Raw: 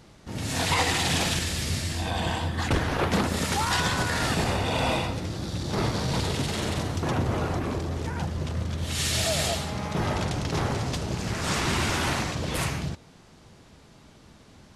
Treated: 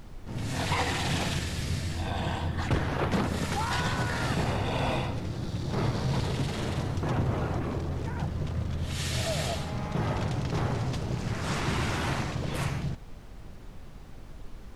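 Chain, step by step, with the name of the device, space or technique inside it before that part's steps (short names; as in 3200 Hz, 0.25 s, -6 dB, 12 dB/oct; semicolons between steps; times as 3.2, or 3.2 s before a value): car interior (bell 130 Hz +5 dB 0.58 oct; high shelf 3700 Hz -7 dB; brown noise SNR 12 dB); gain -3.5 dB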